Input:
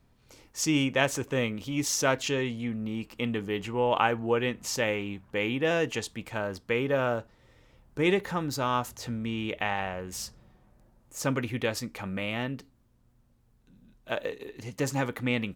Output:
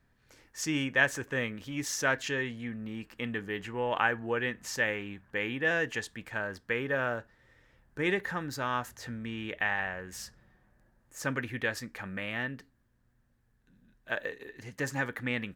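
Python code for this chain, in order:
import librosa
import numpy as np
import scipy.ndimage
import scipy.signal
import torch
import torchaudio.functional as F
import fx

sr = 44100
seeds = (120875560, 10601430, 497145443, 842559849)

y = fx.peak_eq(x, sr, hz=1700.0, db=14.0, octaves=0.41)
y = y * librosa.db_to_amplitude(-6.0)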